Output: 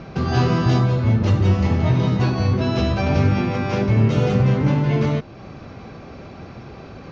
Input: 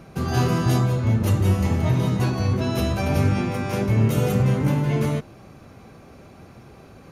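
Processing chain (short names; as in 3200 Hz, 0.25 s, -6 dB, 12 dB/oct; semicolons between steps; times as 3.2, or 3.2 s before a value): steep low-pass 5600 Hz 36 dB/oct; in parallel at +1 dB: compressor, threshold -36 dBFS, peak gain reduction 20 dB; on the sum: gain +1.5 dB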